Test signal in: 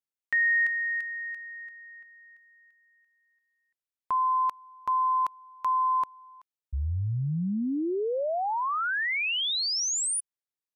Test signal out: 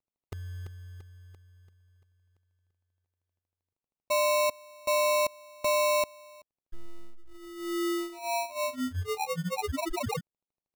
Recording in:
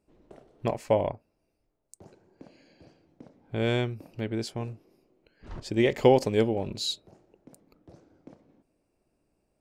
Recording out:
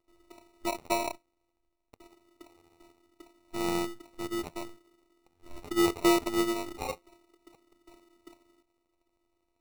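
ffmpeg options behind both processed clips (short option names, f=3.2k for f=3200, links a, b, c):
-af "afftfilt=real='hypot(re,im)*cos(PI*b)':imag='0':win_size=512:overlap=0.75,acrusher=samples=27:mix=1:aa=0.000001"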